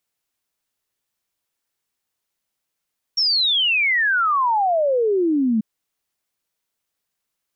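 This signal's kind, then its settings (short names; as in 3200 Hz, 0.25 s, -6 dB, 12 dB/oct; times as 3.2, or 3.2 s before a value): log sweep 5600 Hz -> 210 Hz 2.44 s -15.5 dBFS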